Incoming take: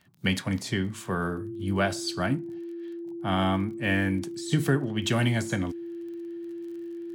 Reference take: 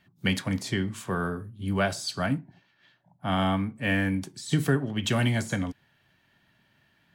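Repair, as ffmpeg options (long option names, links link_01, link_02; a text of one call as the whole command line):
ffmpeg -i in.wav -af "adeclick=threshold=4,bandreject=frequency=340:width=30" out.wav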